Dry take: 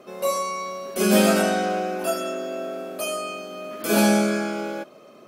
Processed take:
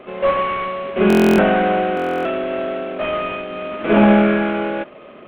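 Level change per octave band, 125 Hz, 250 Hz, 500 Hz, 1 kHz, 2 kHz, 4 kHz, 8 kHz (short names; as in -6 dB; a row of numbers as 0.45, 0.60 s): +6.5 dB, +6.5 dB, +6.5 dB, +7.0 dB, +6.0 dB, -1.0 dB, under -10 dB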